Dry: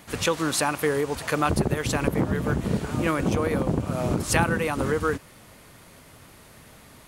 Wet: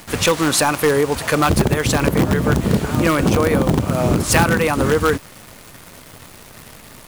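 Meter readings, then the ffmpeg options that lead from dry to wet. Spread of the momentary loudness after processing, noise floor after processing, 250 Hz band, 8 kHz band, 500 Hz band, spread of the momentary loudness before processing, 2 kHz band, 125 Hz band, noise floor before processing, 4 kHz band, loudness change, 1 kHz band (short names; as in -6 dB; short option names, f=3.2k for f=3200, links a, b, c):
3 LU, -42 dBFS, +8.0 dB, +9.0 dB, +8.0 dB, 4 LU, +7.5 dB, +8.0 dB, -50 dBFS, +9.5 dB, +8.0 dB, +7.5 dB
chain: -filter_complex "[0:a]asplit=2[a][b];[b]aeval=exprs='(mod(5.96*val(0)+1,2)-1)/5.96':c=same,volume=-7dB[c];[a][c]amix=inputs=2:normalize=0,acrusher=bits=8:dc=4:mix=0:aa=0.000001,volume=5.5dB"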